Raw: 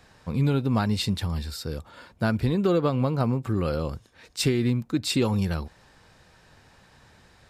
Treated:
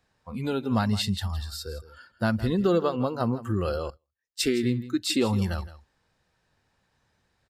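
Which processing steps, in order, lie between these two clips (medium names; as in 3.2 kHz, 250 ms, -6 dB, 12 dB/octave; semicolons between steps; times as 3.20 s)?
spectral noise reduction 16 dB; delay 164 ms -16 dB; 3.90–4.41 s: upward expansion 2.5:1, over -47 dBFS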